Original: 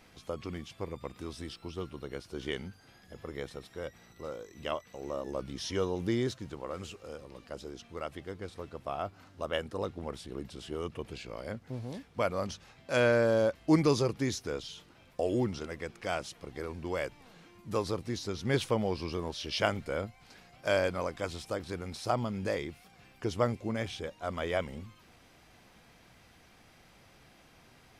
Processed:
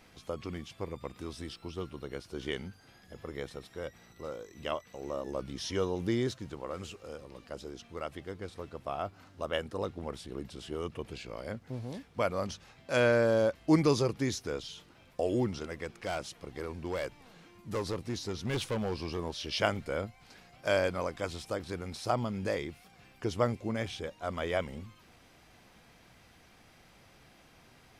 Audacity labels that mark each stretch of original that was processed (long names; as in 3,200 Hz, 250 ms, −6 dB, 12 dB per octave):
15.840000	19.190000	hard clipping −28.5 dBFS